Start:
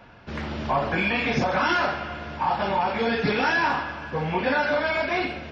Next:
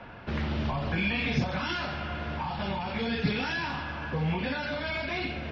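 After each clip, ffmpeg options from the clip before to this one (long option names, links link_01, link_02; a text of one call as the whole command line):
ffmpeg -i in.wav -filter_complex "[0:a]asplit=2[link_01][link_02];[link_02]alimiter=limit=-19dB:level=0:latency=1,volume=-2.5dB[link_03];[link_01][link_03]amix=inputs=2:normalize=0,lowpass=3800,acrossover=split=200|3000[link_04][link_05][link_06];[link_05]acompressor=threshold=-34dB:ratio=5[link_07];[link_04][link_07][link_06]amix=inputs=3:normalize=0,volume=-1dB" out.wav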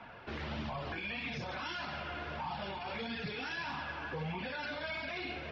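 ffmpeg -i in.wav -af "lowshelf=frequency=180:gain=-10.5,alimiter=level_in=3dB:limit=-24dB:level=0:latency=1:release=51,volume=-3dB,flanger=delay=0.8:depth=2.1:regen=-38:speed=1.6:shape=triangular" out.wav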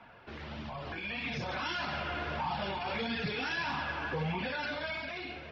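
ffmpeg -i in.wav -af "dynaudnorm=framelen=320:gausssize=7:maxgain=9dB,volume=-4dB" out.wav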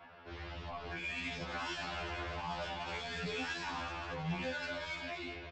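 ffmpeg -i in.wav -af "aresample=16000,asoftclip=type=tanh:threshold=-34.5dB,aresample=44100,afftfilt=real='re*2*eq(mod(b,4),0)':imag='im*2*eq(mod(b,4),0)':win_size=2048:overlap=0.75,volume=1.5dB" out.wav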